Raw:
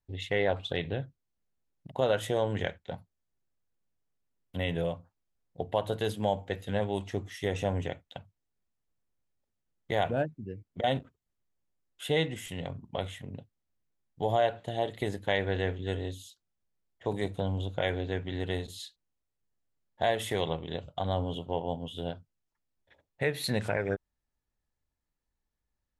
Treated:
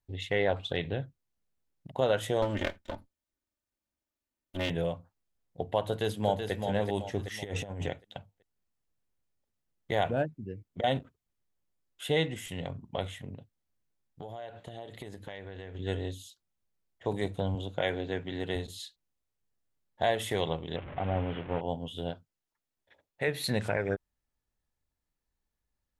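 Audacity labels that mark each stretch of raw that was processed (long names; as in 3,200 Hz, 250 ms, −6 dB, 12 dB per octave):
2.420000	4.700000	lower of the sound and its delayed copy delay 3.3 ms
5.850000	6.520000	delay throw 380 ms, feedback 40%, level −6 dB
7.190000	7.890000	compressor whose output falls as the input rises −34 dBFS, ratio −0.5
13.340000	15.750000	downward compressor, threshold −39 dBFS
17.550000	18.560000	high-pass filter 120 Hz
20.760000	21.610000	linear delta modulator 16 kbit/s, step −37 dBFS
22.140000	23.280000	low-shelf EQ 170 Hz −9 dB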